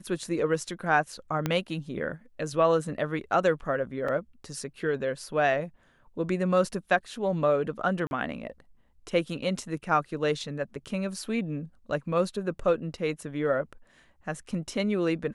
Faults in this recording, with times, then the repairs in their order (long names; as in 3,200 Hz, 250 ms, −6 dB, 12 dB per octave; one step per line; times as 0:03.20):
0:01.46: click −13 dBFS
0:04.08: drop-out 4.6 ms
0:08.07–0:08.11: drop-out 41 ms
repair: click removal
repair the gap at 0:04.08, 4.6 ms
repair the gap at 0:08.07, 41 ms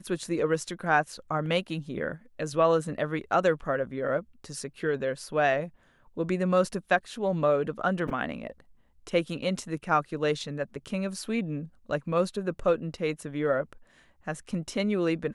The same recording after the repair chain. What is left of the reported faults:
0:01.46: click